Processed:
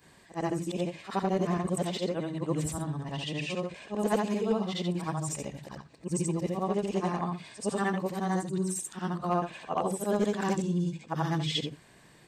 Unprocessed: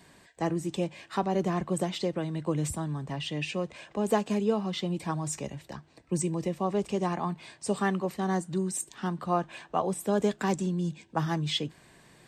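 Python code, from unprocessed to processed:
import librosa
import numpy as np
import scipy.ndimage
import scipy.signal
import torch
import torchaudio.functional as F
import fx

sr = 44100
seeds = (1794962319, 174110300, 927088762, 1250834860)

y = fx.frame_reverse(x, sr, frame_ms=182.0)
y = np.clip(y, -10.0 ** (-21.0 / 20.0), 10.0 ** (-21.0 / 20.0))
y = F.gain(torch.from_numpy(y), 2.5).numpy()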